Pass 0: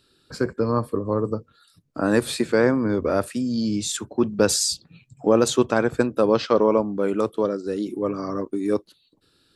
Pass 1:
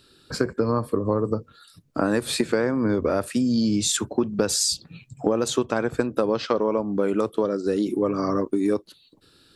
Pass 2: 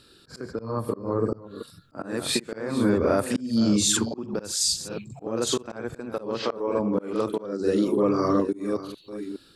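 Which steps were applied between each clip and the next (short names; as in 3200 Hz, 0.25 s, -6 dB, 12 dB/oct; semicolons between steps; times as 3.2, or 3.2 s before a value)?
compressor 10:1, threshold -24 dBFS, peak gain reduction 13.5 dB; gain +6 dB
reverse delay 0.426 s, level -13 dB; reverse echo 44 ms -4.5 dB; auto swell 0.319 s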